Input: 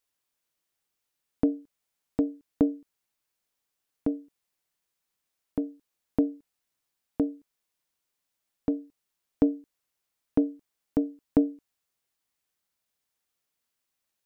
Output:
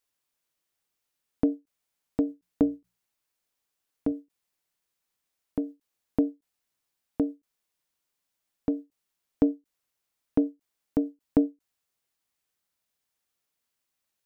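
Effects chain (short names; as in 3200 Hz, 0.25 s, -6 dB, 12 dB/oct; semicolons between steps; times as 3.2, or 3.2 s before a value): 2.27–4.12 notches 60/120/180 Hz; ending taper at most 350 dB/s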